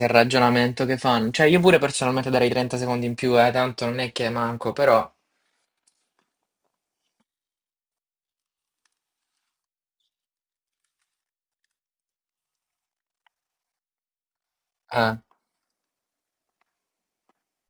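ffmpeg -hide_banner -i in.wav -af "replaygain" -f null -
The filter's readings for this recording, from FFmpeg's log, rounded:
track_gain = +2.8 dB
track_peak = 0.612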